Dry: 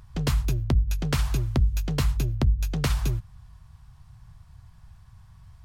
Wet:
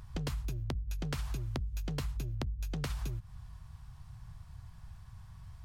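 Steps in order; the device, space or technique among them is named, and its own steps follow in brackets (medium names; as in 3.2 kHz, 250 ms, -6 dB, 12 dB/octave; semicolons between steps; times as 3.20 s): serial compression, peaks first (compression, threshold -30 dBFS, peak gain reduction 12.5 dB; compression 2:1, threshold -35 dBFS, peak gain reduction 4.5 dB)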